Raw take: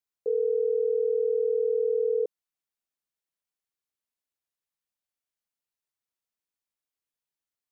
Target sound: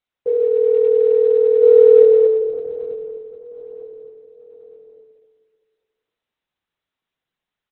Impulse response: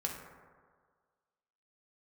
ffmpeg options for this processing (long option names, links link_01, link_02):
-filter_complex "[0:a]asettb=1/sr,asplit=3[link_01][link_02][link_03];[link_01]atrim=end=1.624[link_04];[link_02]atrim=start=1.62:end=2.03,asetpts=PTS-STARTPTS,afade=type=in:duration=0.004:curve=qsin,afade=type=out:start_time=0.406:duration=0.004:curve=qsin,acontrast=86[link_05];[link_03]atrim=start=2.026[link_06];[link_04][link_05]acrossfade=duration=0.004:curve1=hsin:curve2=qsin[link_07];[link_07][link_06]acrossfade=duration=0.004:curve1=qsin:curve2=hsin,aecho=1:1:912|1824|2736:0.126|0.0491|0.0191[link_08];[1:a]atrim=start_sample=2205[link_09];[link_08][link_09]afir=irnorm=-1:irlink=0,volume=6dB" -ar 48000 -c:a libopus -b:a 6k